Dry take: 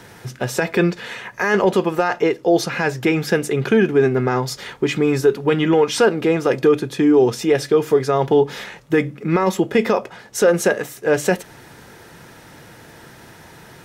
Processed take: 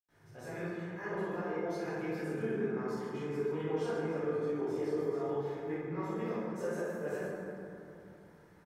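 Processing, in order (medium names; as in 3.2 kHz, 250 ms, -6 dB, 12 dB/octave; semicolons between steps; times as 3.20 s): tempo 1.6×; reverberation RT60 2.8 s, pre-delay 86 ms, DRR -60 dB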